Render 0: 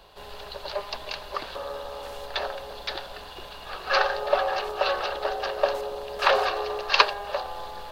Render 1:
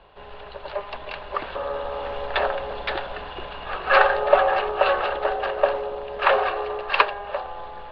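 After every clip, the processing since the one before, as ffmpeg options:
ffmpeg -i in.wav -af "lowpass=frequency=2900:width=0.5412,lowpass=frequency=2900:width=1.3066,dynaudnorm=framelen=270:gausssize=13:maxgain=9.5dB,volume=1dB" out.wav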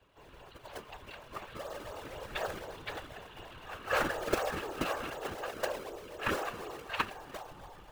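ffmpeg -i in.wav -filter_complex "[0:a]acrossover=split=120|310|870[link_01][link_02][link_03][link_04];[link_03]acrusher=samples=28:mix=1:aa=0.000001:lfo=1:lforange=44.8:lforate=4[link_05];[link_01][link_02][link_05][link_04]amix=inputs=4:normalize=0,afftfilt=real='hypot(re,im)*cos(2*PI*random(0))':imag='hypot(re,im)*sin(2*PI*random(1))':win_size=512:overlap=0.75,volume=-7dB" out.wav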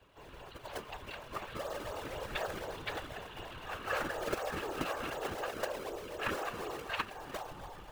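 ffmpeg -i in.wav -af "acompressor=threshold=-37dB:ratio=3,volume=3dB" out.wav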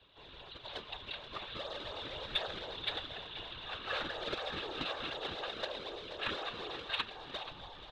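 ffmpeg -i in.wav -filter_complex "[0:a]lowpass=frequency=3700:width_type=q:width=8.9,aecho=1:1:480:0.2,asplit=2[link_01][link_02];[link_02]asoftclip=type=tanh:threshold=-26dB,volume=-11dB[link_03];[link_01][link_03]amix=inputs=2:normalize=0,volume=-6.5dB" out.wav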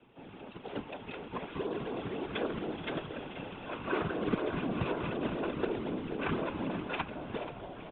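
ffmpeg -i in.wav -filter_complex "[0:a]highpass=frequency=250:width_type=q:width=0.5412,highpass=frequency=250:width_type=q:width=1.307,lowpass=frequency=3000:width_type=q:width=0.5176,lowpass=frequency=3000:width_type=q:width=0.7071,lowpass=frequency=3000:width_type=q:width=1.932,afreqshift=-160,tiltshelf=frequency=790:gain=7,asplit=8[link_01][link_02][link_03][link_04][link_05][link_06][link_07][link_08];[link_02]adelay=433,afreqshift=-49,volume=-16dB[link_09];[link_03]adelay=866,afreqshift=-98,volume=-19.9dB[link_10];[link_04]adelay=1299,afreqshift=-147,volume=-23.8dB[link_11];[link_05]adelay=1732,afreqshift=-196,volume=-27.6dB[link_12];[link_06]adelay=2165,afreqshift=-245,volume=-31.5dB[link_13];[link_07]adelay=2598,afreqshift=-294,volume=-35.4dB[link_14];[link_08]adelay=3031,afreqshift=-343,volume=-39.3dB[link_15];[link_01][link_09][link_10][link_11][link_12][link_13][link_14][link_15]amix=inputs=8:normalize=0,volume=5.5dB" out.wav

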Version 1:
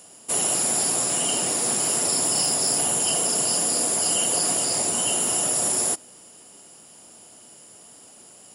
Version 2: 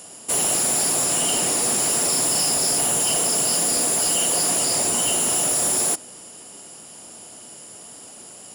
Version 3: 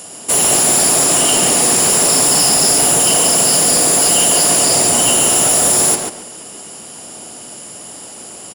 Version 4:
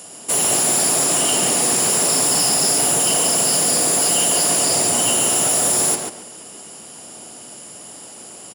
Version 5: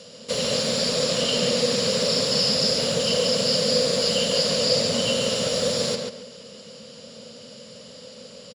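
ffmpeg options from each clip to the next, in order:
ffmpeg -i in.wav -af "asoftclip=type=tanh:threshold=-23.5dB,volume=6.5dB" out.wav
ffmpeg -i in.wav -filter_complex "[0:a]asplit=2[link_01][link_02];[link_02]adelay=140,lowpass=frequency=4100:poles=1,volume=-3.5dB,asplit=2[link_03][link_04];[link_04]adelay=140,lowpass=frequency=4100:poles=1,volume=0.26,asplit=2[link_05][link_06];[link_06]adelay=140,lowpass=frequency=4100:poles=1,volume=0.26,asplit=2[link_07][link_08];[link_08]adelay=140,lowpass=frequency=4100:poles=1,volume=0.26[link_09];[link_01][link_03][link_05][link_07][link_09]amix=inputs=5:normalize=0,volume=8dB" out.wav
ffmpeg -i in.wav -af "highpass=71,volume=-5dB" out.wav
ffmpeg -i in.wav -af "firequalizer=gain_entry='entry(140,0);entry(230,4);entry(330,-20);entry(500,11);entry(740,-16);entry(1100,-7);entry(2700,-3);entry(4300,6);entry(8700,-23);entry(13000,-28)':delay=0.05:min_phase=1" out.wav

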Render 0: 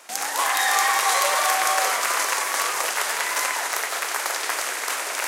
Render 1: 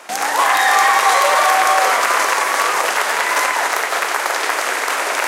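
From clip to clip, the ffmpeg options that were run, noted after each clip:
ffmpeg -i in.wav -filter_complex "[0:a]highshelf=frequency=3400:gain=-10.5,asplit=2[link_01][link_02];[link_02]alimiter=limit=-19dB:level=0:latency=1:release=154,volume=1dB[link_03];[link_01][link_03]amix=inputs=2:normalize=0,volume=5.5dB" out.wav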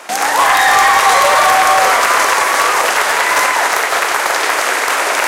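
ffmpeg -i in.wav -af "acontrast=59,volume=-1dB" out.wav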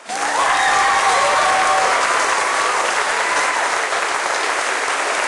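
ffmpeg -i in.wav -af "volume=-6dB" -ar 22050 -c:a aac -b:a 32k out.aac

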